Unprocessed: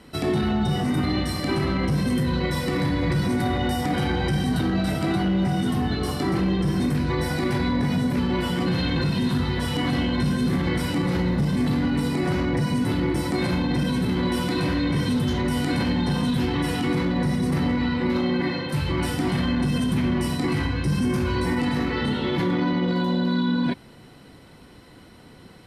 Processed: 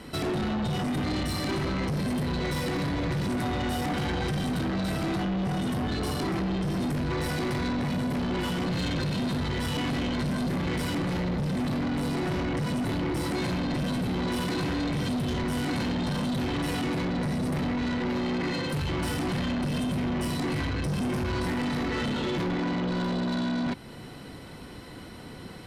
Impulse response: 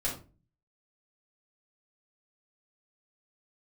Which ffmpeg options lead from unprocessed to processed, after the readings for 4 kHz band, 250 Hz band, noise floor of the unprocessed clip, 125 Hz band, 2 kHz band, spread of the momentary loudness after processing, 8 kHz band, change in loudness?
-4.0 dB, -5.5 dB, -48 dBFS, -5.5 dB, -4.0 dB, 1 LU, -2.5 dB, -5.0 dB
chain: -filter_complex "[0:a]asplit=2[s0][s1];[s1]acompressor=threshold=0.0224:ratio=6,volume=0.794[s2];[s0][s2]amix=inputs=2:normalize=0,asoftclip=type=tanh:threshold=0.0501"

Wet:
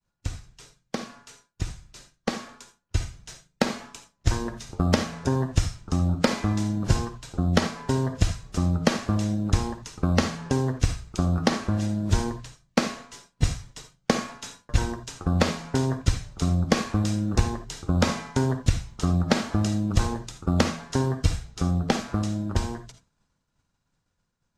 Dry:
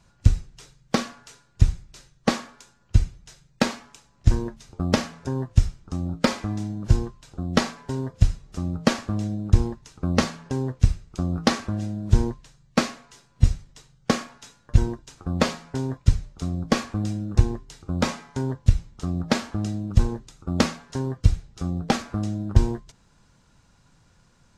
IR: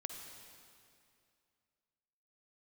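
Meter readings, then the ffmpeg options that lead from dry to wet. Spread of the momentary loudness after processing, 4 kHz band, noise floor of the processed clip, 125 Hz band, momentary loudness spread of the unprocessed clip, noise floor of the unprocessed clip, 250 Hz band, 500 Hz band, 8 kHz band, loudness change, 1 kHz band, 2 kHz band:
12 LU, 0.0 dB, -76 dBFS, -1.5 dB, 8 LU, -60 dBFS, +0.5 dB, +0.5 dB, +2.0 dB, -1.0 dB, +0.5 dB, 0.0 dB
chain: -filter_complex "[0:a]bandreject=f=60:t=h:w=6,bandreject=f=120:t=h:w=6,acrossover=split=630|1700[s0][s1][s2];[s0]acompressor=threshold=0.0398:ratio=4[s3];[s1]acompressor=threshold=0.0126:ratio=4[s4];[s2]acompressor=threshold=0.0126:ratio=4[s5];[s3][s4][s5]amix=inputs=3:normalize=0,agate=range=0.0224:threshold=0.00447:ratio=3:detection=peak,dynaudnorm=f=530:g=11:m=3.76[s6];[1:a]atrim=start_sample=2205,atrim=end_sample=3969[s7];[s6][s7]afir=irnorm=-1:irlink=0,volume=1.26"

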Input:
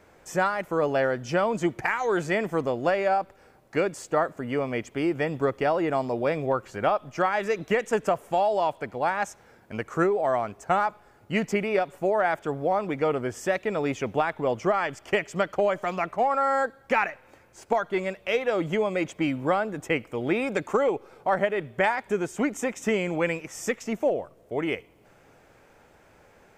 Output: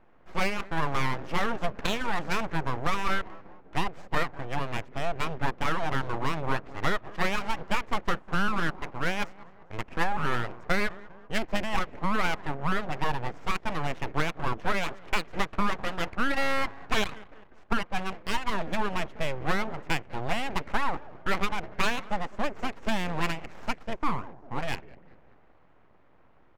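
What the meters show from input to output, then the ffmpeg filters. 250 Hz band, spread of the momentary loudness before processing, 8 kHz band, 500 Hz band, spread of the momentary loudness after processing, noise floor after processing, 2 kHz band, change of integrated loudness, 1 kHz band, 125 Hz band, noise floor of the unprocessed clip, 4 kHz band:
-4.5 dB, 5 LU, -2.5 dB, -10.5 dB, 6 LU, -56 dBFS, -0.5 dB, -4.5 dB, -3.5 dB, +0.5 dB, -57 dBFS, +5.0 dB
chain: -filter_complex "[0:a]asplit=5[s0][s1][s2][s3][s4];[s1]adelay=198,afreqshift=-120,volume=0.119[s5];[s2]adelay=396,afreqshift=-240,volume=0.0631[s6];[s3]adelay=594,afreqshift=-360,volume=0.0335[s7];[s4]adelay=792,afreqshift=-480,volume=0.0178[s8];[s0][s5][s6][s7][s8]amix=inputs=5:normalize=0,aeval=exprs='abs(val(0))':c=same,adynamicsmooth=sensitivity=7.5:basefreq=1500"

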